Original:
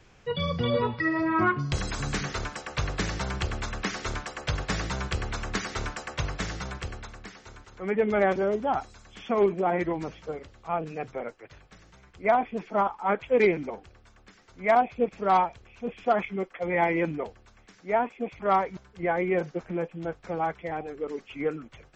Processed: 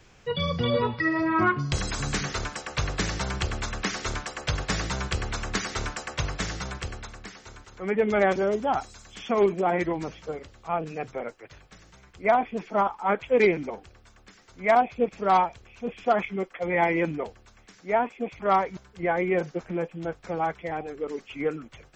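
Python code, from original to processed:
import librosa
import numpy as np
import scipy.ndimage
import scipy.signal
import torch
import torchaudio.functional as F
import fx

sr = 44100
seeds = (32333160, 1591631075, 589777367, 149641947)

y = fx.high_shelf(x, sr, hz=4700.0, db=fx.steps((0.0, 5.5), (8.05, 11.5), (9.87, 6.0)))
y = y * 10.0 ** (1.0 / 20.0)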